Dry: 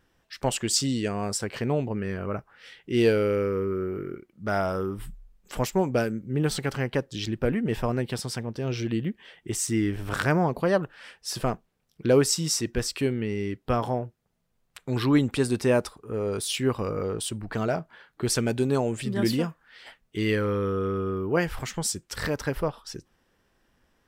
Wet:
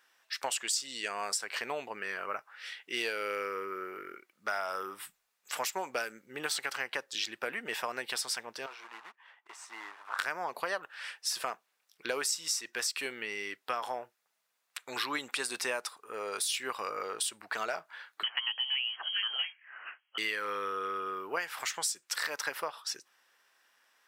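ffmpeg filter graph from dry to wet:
ffmpeg -i in.wav -filter_complex "[0:a]asettb=1/sr,asplit=3[link_01][link_02][link_03];[link_01]atrim=end=8.664[link_04];[link_02]atrim=start=8.66:end=10.19,asetpts=PTS-STARTPTS,afade=type=in:duration=0.004:curve=qsin,afade=type=out:start_time=1.526:duration=0.004:curve=qsin,acrusher=bits=3:mode=log:mix=0:aa=0.000001,bandpass=frequency=970:width_type=q:width=2.6[link_05];[link_03]atrim=start=10.186[link_06];[link_04][link_05]acrossfade=duration=0.004:curve1=hsin:curve2=qsin[link_07];[link_07][link_06]acrossfade=duration=0.004:curve1=qsin:curve2=hsin,asettb=1/sr,asplit=3[link_08][link_09][link_10];[link_08]atrim=end=18.234[link_11];[link_09]atrim=start=18.23:end=20.18,asetpts=PTS-STARTPTS,afade=type=in:duration=0.004:curve=qsin,afade=type=out:start_time=1.946:duration=0.004:curve=qsin,highpass=350,lowpass=frequency=2900:width_type=q:width=0.5098,lowpass=frequency=2900:width_type=q:width=0.6013,lowpass=frequency=2900:width_type=q:width=0.9,lowpass=frequency=2900:width_type=q:width=2.563,afreqshift=-3400[link_12];[link_10]atrim=start=20.176[link_13];[link_11][link_12]acrossfade=duration=0.004:curve1=hsin:curve2=qsin[link_14];[link_14][link_13]acrossfade=duration=0.004:curve1=qsin:curve2=hsin,highpass=1100,bandreject=frequency=3100:width=25,acompressor=threshold=-35dB:ratio=6,volume=5dB" out.wav

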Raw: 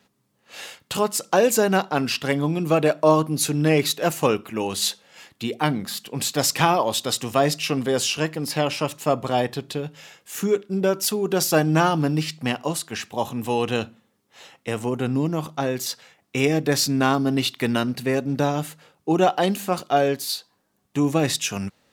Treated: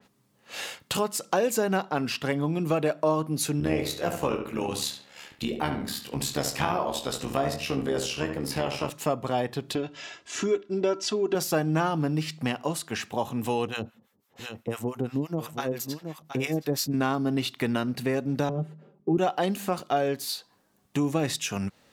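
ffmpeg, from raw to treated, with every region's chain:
ffmpeg -i in.wav -filter_complex "[0:a]asettb=1/sr,asplit=3[link_01][link_02][link_03];[link_01]atrim=end=3.604[link_04];[link_02]atrim=start=3.6:end=8.9,asetpts=PTS-STARTPTS,afade=type=in:duration=0.004:curve=qsin,afade=type=out:start_time=5.296:duration=0.004:curve=qsin,tremolo=f=71:d=0.788,asplit=2[link_05][link_06];[link_06]adelay=22,volume=-8dB[link_07];[link_05][link_07]amix=inputs=2:normalize=0,atrim=end_sample=233730,asplit=2[link_08][link_09];[link_09]adelay=70,lowpass=frequency=3000:poles=1,volume=-7dB,asplit=2[link_10][link_11];[link_11]adelay=70,lowpass=frequency=3000:poles=1,volume=0.34,asplit=2[link_12][link_13];[link_13]adelay=70,lowpass=frequency=3000:poles=1,volume=0.34,asplit=2[link_14][link_15];[link_15]adelay=70,lowpass=frequency=3000:poles=1,volume=0.34[link_16];[link_08][link_10][link_12][link_14][link_16]amix=inputs=5:normalize=0,atrim=end_sample=233730[link_17];[link_03]atrim=start=8.896[link_18];[link_04][link_17]acrossfade=duration=0.004:curve1=hsin:curve2=qsin[link_19];[link_19][link_18]acrossfade=duration=0.004:curve1=qsin:curve2=hsin,asettb=1/sr,asplit=3[link_20][link_21][link_22];[link_20]atrim=end=9.754[link_23];[link_21]atrim=start=9.75:end=11.35,asetpts=PTS-STARTPTS,afade=type=in:duration=0.004:curve=qsin,afade=type=out:start_time=1.596:duration=0.004:curve=qsin,lowpass=frequency=6600:width=0.5412,lowpass=frequency=6600:width=1.3066,aecho=1:1:3:0.69,atrim=end_sample=70560[link_24];[link_22]atrim=start=11.346[link_25];[link_23][link_24]acrossfade=duration=0.004:curve1=hsin:curve2=qsin[link_26];[link_26][link_25]acrossfade=duration=0.004:curve1=qsin:curve2=hsin,asettb=1/sr,asplit=3[link_27][link_28][link_29];[link_27]atrim=end=13.674[link_30];[link_28]atrim=start=13.67:end=16.94,asetpts=PTS-STARTPTS,afade=type=in:duration=0.004:curve=qsin,afade=type=out:start_time=3.266:duration=0.004:curve=qsin,acrossover=split=810[link_31][link_32];[link_31]aeval=exprs='val(0)*(1-1/2+1/2*cos(2*PI*5.9*n/s))':channel_layout=same[link_33];[link_32]aeval=exprs='val(0)*(1-1/2-1/2*cos(2*PI*5.9*n/s))':channel_layout=same[link_34];[link_33][link_34]amix=inputs=2:normalize=0,equalizer=frequency=13000:width=6.1:gain=12.5,aecho=1:1:721:0.266,atrim=end_sample=144207[link_35];[link_29]atrim=start=16.936[link_36];[link_30][link_35]acrossfade=duration=0.004:curve1=hsin:curve2=qsin[link_37];[link_37][link_36]acrossfade=duration=0.004:curve1=qsin:curve2=hsin,asettb=1/sr,asplit=3[link_38][link_39][link_40];[link_38]atrim=end=18.494[link_41];[link_39]atrim=start=18.49:end=19.18,asetpts=PTS-STARTPTS,afade=type=in:duration=0.004:curve=qsin,afade=type=out:start_time=0.686:duration=0.004:curve=qsin,bandpass=frequency=290:width_type=q:width=1.6,lowshelf=frequency=310:gain=10,aecho=1:1:5.1:0.8,atrim=end_sample=30429[link_42];[link_40]atrim=start=19.176[link_43];[link_41][link_42]acrossfade=duration=0.004:curve1=hsin:curve2=qsin[link_44];[link_44][link_43]acrossfade=duration=0.004:curve1=qsin:curve2=hsin,acompressor=threshold=-31dB:ratio=2,adynamicequalizer=threshold=0.00631:dfrequency=2500:dqfactor=0.7:tfrequency=2500:tqfactor=0.7:attack=5:release=100:ratio=0.375:range=2.5:mode=cutabove:tftype=highshelf,volume=2.5dB" out.wav

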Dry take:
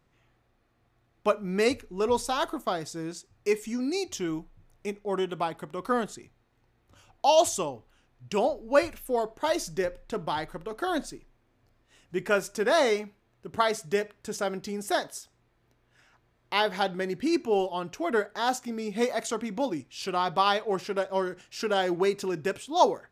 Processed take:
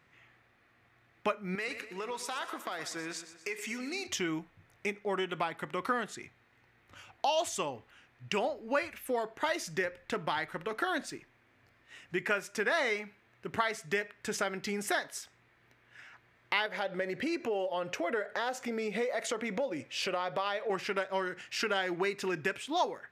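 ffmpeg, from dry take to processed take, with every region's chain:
ffmpeg -i in.wav -filter_complex "[0:a]asettb=1/sr,asplit=3[link_01][link_02][link_03];[link_01]atrim=end=1.554[link_04];[link_02]atrim=start=1.55:end=4.07,asetpts=PTS-STARTPTS,afade=type=in:duration=0.004:curve=qsin,afade=type=out:start_time=2.516:duration=0.004:curve=qsin,highpass=frequency=480:poles=1,acompressor=threshold=-37dB:ratio=6:attack=3.2:release=140:knee=1:detection=peak,aecho=1:1:122|244|366|488|610:0.237|0.123|0.0641|0.0333|0.0173,atrim=end_sample=111132[link_05];[link_03]atrim=start=4.066[link_06];[link_04][link_05]acrossfade=duration=0.004:curve1=hsin:curve2=qsin[link_07];[link_07][link_06]acrossfade=duration=0.004:curve1=qsin:curve2=hsin,asettb=1/sr,asplit=3[link_08][link_09][link_10];[link_08]atrim=end=16.664[link_11];[link_09]atrim=start=16.66:end=20.7,asetpts=PTS-STARTPTS,afade=type=in:duration=0.004:curve=qsin,afade=type=out:start_time=4.036:duration=0.004:curve=qsin,equalizer=frequency=540:width=2.8:gain=14,acompressor=threshold=-33dB:ratio=2:attack=3.2:release=140:knee=1:detection=peak[link_12];[link_10]atrim=start=20.696[link_13];[link_11][link_12]acrossfade=duration=0.004:curve1=hsin:curve2=qsin[link_14];[link_14][link_13]acrossfade=duration=0.004:curve1=qsin:curve2=hsin,highpass=75,equalizer=frequency=2000:width_type=o:width=1.4:gain=12.5,acompressor=threshold=-31dB:ratio=3" out.wav

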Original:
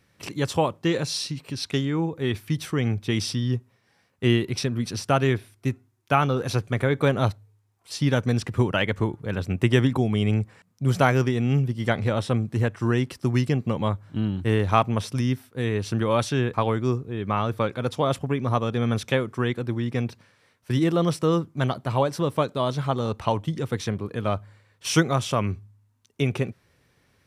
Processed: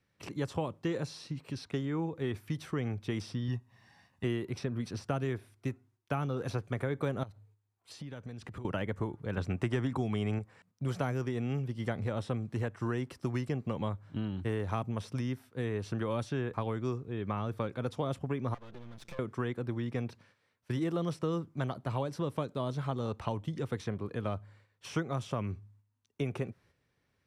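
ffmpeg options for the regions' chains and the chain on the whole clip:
ffmpeg -i in.wav -filter_complex "[0:a]asettb=1/sr,asplit=3[link_01][link_02][link_03];[link_01]atrim=end=3.484[link_04];[link_02]atrim=start=3.48:end=4.24,asetpts=PTS-STARTPTS,afade=type=in:duration=0.004:curve=qsin,afade=type=out:start_time=0.756:duration=0.004:curve=qsin,aecho=1:1:1.1:0.66,atrim=end_sample=33516,acompressor=mode=upward:threshold=-45dB:ratio=2.5:attack=3.2:release=140:knee=2.83:detection=peak[link_05];[link_03]atrim=start=4.236[link_06];[link_04][link_05]acrossfade=duration=0.004:curve1=hsin:curve2=qsin[link_07];[link_07][link_06]acrossfade=duration=0.004:curve1=qsin:curve2=hsin,asettb=1/sr,asplit=3[link_08][link_09][link_10];[link_08]atrim=end=7.234[link_11];[link_09]atrim=start=7.23:end=8.65,asetpts=PTS-STARTPTS,afade=type=in:duration=0.004:curve=qsin,afade=type=out:start_time=1.416:duration=0.004:curve=qsin,bandreject=frequency=5500:width=13,acompressor=threshold=-33dB:ratio=16:attack=3.2:release=140:knee=1:detection=peak[link_12];[link_10]atrim=start=8.646[link_13];[link_11][link_12]acrossfade=duration=0.004:curve1=hsin:curve2=qsin[link_14];[link_14][link_13]acrossfade=duration=0.004:curve1=qsin:curve2=hsin,asettb=1/sr,asplit=3[link_15][link_16][link_17];[link_15]atrim=end=9.374[link_18];[link_16]atrim=start=9.37:end=10.39,asetpts=PTS-STARTPTS,afade=type=in:duration=0.004:curve=qsin,afade=type=out:start_time=1.016:duration=0.004:curve=qsin,lowpass=8500,equalizer=frequency=540:width=1.5:gain=-3.5,acontrast=49[link_19];[link_17]atrim=start=10.386[link_20];[link_18][link_19]acrossfade=duration=0.004:curve1=hsin:curve2=qsin[link_21];[link_21][link_20]acrossfade=duration=0.004:curve1=qsin:curve2=hsin,asettb=1/sr,asplit=3[link_22][link_23][link_24];[link_22]atrim=end=18.544[link_25];[link_23]atrim=start=18.54:end=19.19,asetpts=PTS-STARTPTS,afade=type=in:duration=0.004:curve=qsin,afade=type=out:start_time=0.646:duration=0.004:curve=qsin,acompressor=threshold=-34dB:ratio=16:attack=3.2:release=140:knee=1:detection=peak,aecho=1:1:5.8:0.88,atrim=end_sample=28665,aeval=exprs='max(val(0),0)':channel_layout=same[link_26];[link_24]atrim=start=19.186[link_27];[link_25][link_26]acrossfade=duration=0.004:curve1=hsin:curve2=qsin[link_28];[link_28][link_27]acrossfade=duration=0.004:curve1=qsin:curve2=hsin,agate=range=-7dB:threshold=-55dB:ratio=16:detection=peak,highshelf=frequency=8300:gain=-9,acrossover=split=400|1800|6400[link_29][link_30][link_31][link_32];[link_29]acompressor=threshold=-27dB:ratio=4[link_33];[link_30]acompressor=threshold=-31dB:ratio=4[link_34];[link_31]acompressor=threshold=-47dB:ratio=4[link_35];[link_32]acompressor=threshold=-52dB:ratio=4[link_36];[link_33][link_34][link_35][link_36]amix=inputs=4:normalize=0,volume=-5.5dB" out.wav

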